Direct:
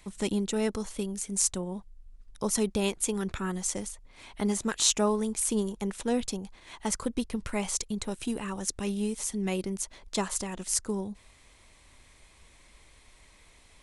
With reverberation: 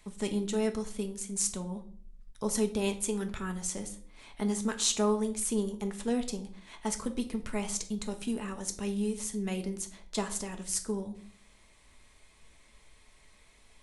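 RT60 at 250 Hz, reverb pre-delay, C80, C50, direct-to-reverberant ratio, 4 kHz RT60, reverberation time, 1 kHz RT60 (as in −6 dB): 0.80 s, 5 ms, 17.0 dB, 13.5 dB, 5.0 dB, 0.40 s, 0.55 s, 0.45 s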